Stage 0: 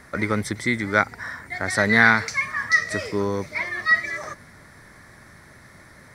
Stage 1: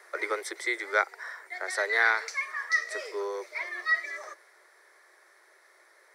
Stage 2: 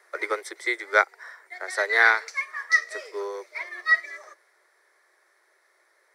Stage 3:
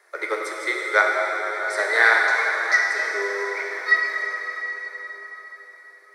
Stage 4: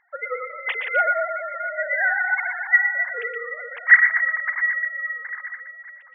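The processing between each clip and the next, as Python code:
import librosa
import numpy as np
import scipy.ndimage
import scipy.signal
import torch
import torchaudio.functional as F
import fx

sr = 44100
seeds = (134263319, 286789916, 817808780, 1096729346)

y1 = scipy.signal.sosfilt(scipy.signal.butter(16, 350.0, 'highpass', fs=sr, output='sos'), x)
y1 = fx.rider(y1, sr, range_db=4, speed_s=2.0)
y1 = F.gain(torch.from_numpy(y1), -8.0).numpy()
y2 = fx.upward_expand(y1, sr, threshold_db=-44.0, expansion=1.5)
y2 = F.gain(torch.from_numpy(y2), 6.5).numpy()
y3 = fx.rev_plate(y2, sr, seeds[0], rt60_s=4.9, hf_ratio=0.8, predelay_ms=0, drr_db=-2.0)
y4 = fx.sine_speech(y3, sr)
y4 = y4 + 10.0 ** (-9.0 / 20.0) * np.pad(y4, (int(119 * sr / 1000.0), 0))[:len(y4)]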